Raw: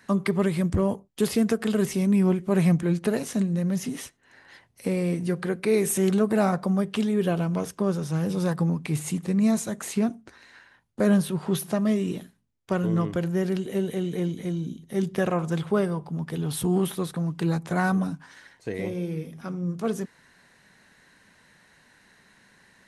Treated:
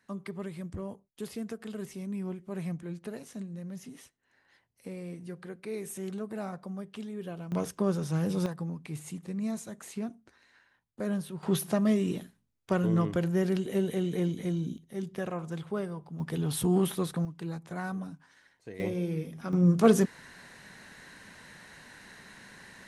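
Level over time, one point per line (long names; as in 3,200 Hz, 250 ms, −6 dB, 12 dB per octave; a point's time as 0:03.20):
−15 dB
from 0:07.52 −3 dB
from 0:08.46 −11.5 dB
from 0:11.43 −2 dB
from 0:14.78 −10 dB
from 0:16.20 −2 dB
from 0:17.25 −12 dB
from 0:18.80 −1.5 dB
from 0:19.53 +7 dB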